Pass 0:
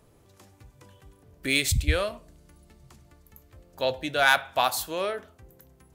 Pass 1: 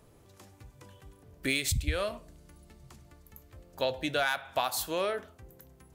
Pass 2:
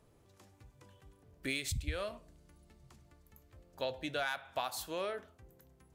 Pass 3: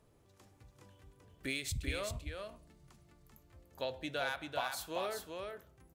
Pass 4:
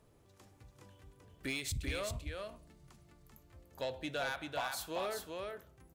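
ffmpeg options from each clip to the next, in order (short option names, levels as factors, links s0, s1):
-af "acompressor=threshold=0.0562:ratio=12"
-af "highshelf=f=12000:g=-6.5,volume=0.447"
-af "aecho=1:1:389:0.596,volume=0.841"
-af "asoftclip=type=tanh:threshold=0.0299,volume=1.19"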